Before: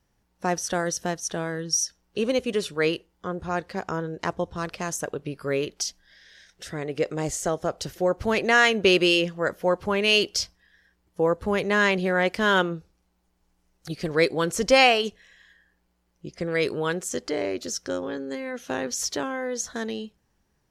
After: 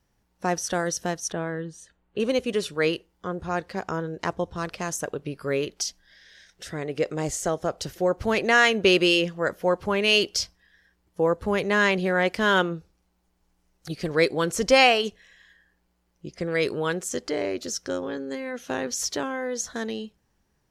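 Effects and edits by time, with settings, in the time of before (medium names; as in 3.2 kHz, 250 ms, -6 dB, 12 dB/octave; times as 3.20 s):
1.32–2.20 s: boxcar filter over 8 samples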